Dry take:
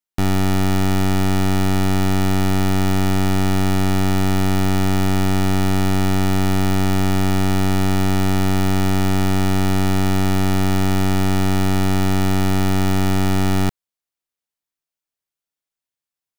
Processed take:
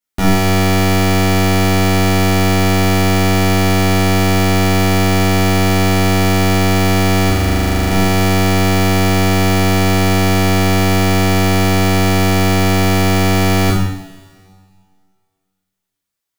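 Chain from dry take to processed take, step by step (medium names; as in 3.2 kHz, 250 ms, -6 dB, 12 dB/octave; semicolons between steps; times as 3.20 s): 7.29–7.90 s: AM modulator 70 Hz, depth 70%; two-slope reverb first 0.77 s, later 2.1 s, from -17 dB, DRR -8.5 dB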